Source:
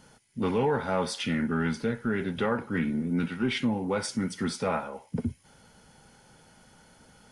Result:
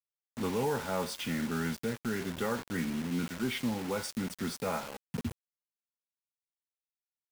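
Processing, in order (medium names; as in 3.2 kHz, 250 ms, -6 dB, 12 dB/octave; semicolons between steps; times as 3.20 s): word length cut 6-bit, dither none; trim -5.5 dB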